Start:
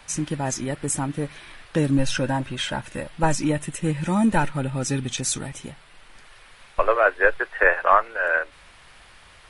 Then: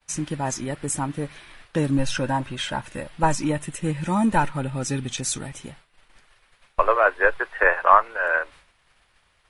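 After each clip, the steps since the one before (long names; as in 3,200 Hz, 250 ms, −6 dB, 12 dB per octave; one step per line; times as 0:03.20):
downward expander −40 dBFS
dynamic equaliser 1,000 Hz, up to +6 dB, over −37 dBFS, Q 2.4
level −1.5 dB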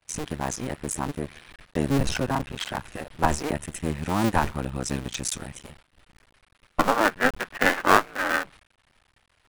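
sub-harmonics by changed cycles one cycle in 2, muted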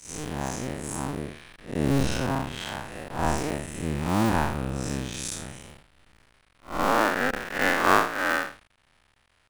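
spectrum smeared in time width 152 ms
level +2.5 dB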